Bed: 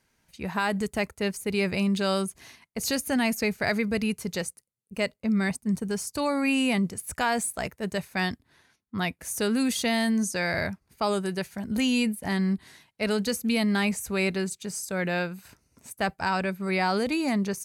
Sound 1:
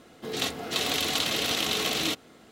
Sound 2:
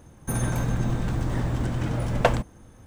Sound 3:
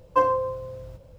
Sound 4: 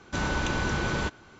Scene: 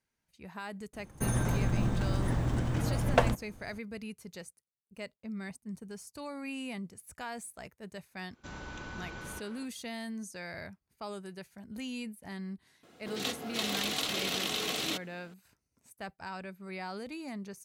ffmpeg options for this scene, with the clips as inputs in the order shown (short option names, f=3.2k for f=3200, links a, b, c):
-filter_complex "[0:a]volume=-15dB[a];[4:a]asplit=2[b][c];[c]adelay=250,highpass=300,lowpass=3.4k,asoftclip=type=hard:threshold=-24dB,volume=-7dB[d];[b][d]amix=inputs=2:normalize=0[e];[1:a]highpass=83[f];[2:a]atrim=end=2.86,asetpts=PTS-STARTPTS,volume=-4dB,afade=t=in:d=0.004:c=hsin,afade=t=out:st=2.856:d=0.004:c=hsin,adelay=930[g];[e]atrim=end=1.39,asetpts=PTS-STARTPTS,volume=-16dB,afade=t=in:d=0.004:c=hsin,afade=t=out:st=1.386:d=0.004:c=hsin,adelay=8310[h];[f]atrim=end=2.51,asetpts=PTS-STARTPTS,volume=-6dB,afade=t=in:d=0.004:c=hsin,afade=t=out:st=2.506:d=0.004:c=hsin,adelay=12830[i];[a][g][h][i]amix=inputs=4:normalize=0"